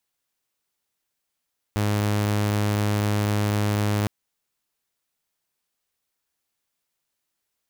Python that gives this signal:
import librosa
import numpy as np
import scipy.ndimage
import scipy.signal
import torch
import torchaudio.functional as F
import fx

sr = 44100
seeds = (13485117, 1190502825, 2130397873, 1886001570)

y = 10.0 ** (-18.0 / 20.0) * (2.0 * np.mod(104.0 * (np.arange(round(2.31 * sr)) / sr), 1.0) - 1.0)